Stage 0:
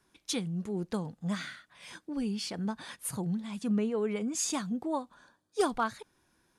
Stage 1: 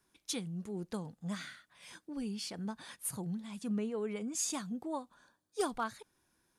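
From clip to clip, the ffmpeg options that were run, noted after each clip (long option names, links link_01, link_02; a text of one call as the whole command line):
ffmpeg -i in.wav -af "highshelf=frequency=7700:gain=7.5,volume=-6dB" out.wav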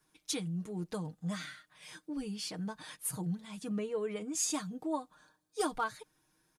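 ffmpeg -i in.wav -af "aecho=1:1:6.5:0.74" out.wav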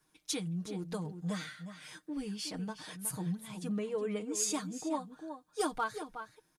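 ffmpeg -i in.wav -filter_complex "[0:a]asplit=2[link_01][link_02];[link_02]adelay=367.3,volume=-9dB,highshelf=frequency=4000:gain=-8.27[link_03];[link_01][link_03]amix=inputs=2:normalize=0" out.wav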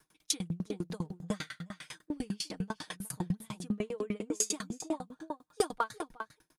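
ffmpeg -i in.wav -filter_complex "[0:a]asplit=2[link_01][link_02];[link_02]acompressor=threshold=-44dB:ratio=6,volume=-3dB[link_03];[link_01][link_03]amix=inputs=2:normalize=0,aeval=exprs='val(0)*pow(10,-33*if(lt(mod(10*n/s,1),2*abs(10)/1000),1-mod(10*n/s,1)/(2*abs(10)/1000),(mod(10*n/s,1)-2*abs(10)/1000)/(1-2*abs(10)/1000))/20)':channel_layout=same,volume=7dB" out.wav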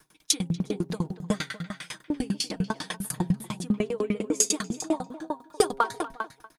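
ffmpeg -i in.wav -filter_complex "[0:a]bandreject=frequency=134.9:width_type=h:width=4,bandreject=frequency=269.8:width_type=h:width=4,bandreject=frequency=404.7:width_type=h:width=4,bandreject=frequency=539.6:width_type=h:width=4,bandreject=frequency=674.5:width_type=h:width=4,bandreject=frequency=809.4:width_type=h:width=4,bandreject=frequency=944.3:width_type=h:width=4,asplit=2[link_01][link_02];[link_02]adelay=240,highpass=300,lowpass=3400,asoftclip=type=hard:threshold=-23dB,volume=-16dB[link_03];[link_01][link_03]amix=inputs=2:normalize=0,volume=8dB" out.wav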